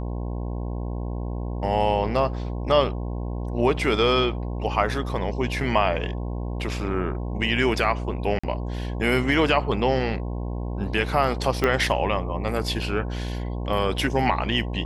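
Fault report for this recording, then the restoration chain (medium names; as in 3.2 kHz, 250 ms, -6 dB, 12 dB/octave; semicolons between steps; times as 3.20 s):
buzz 60 Hz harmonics 18 -29 dBFS
8.39–8.44 s: dropout 45 ms
11.64 s: pop -9 dBFS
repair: de-click; de-hum 60 Hz, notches 18; interpolate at 8.39 s, 45 ms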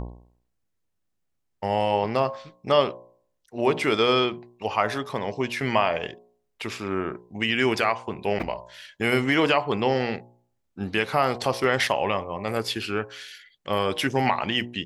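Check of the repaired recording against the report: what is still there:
11.64 s: pop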